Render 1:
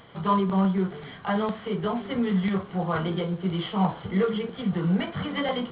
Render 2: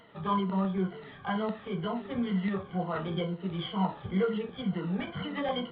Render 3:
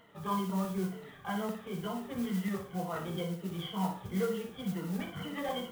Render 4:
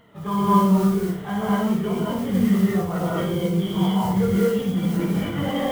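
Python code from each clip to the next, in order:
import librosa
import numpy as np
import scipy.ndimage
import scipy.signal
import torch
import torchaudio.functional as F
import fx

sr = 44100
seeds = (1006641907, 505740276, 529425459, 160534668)

y1 = fx.spec_ripple(x, sr, per_octave=1.9, drift_hz=-2.1, depth_db=13)
y1 = F.gain(torch.from_numpy(y1), -7.0).numpy()
y2 = fx.mod_noise(y1, sr, seeds[0], snr_db=19)
y2 = fx.room_flutter(y2, sr, wall_m=10.1, rt60_s=0.39)
y2 = F.gain(torch.from_numpy(y2), -4.5).numpy()
y3 = fx.low_shelf(y2, sr, hz=330.0, db=8.0)
y3 = fx.rev_gated(y3, sr, seeds[1], gate_ms=280, shape='rising', drr_db=-6.0)
y3 = F.gain(torch.from_numpy(y3), 3.0).numpy()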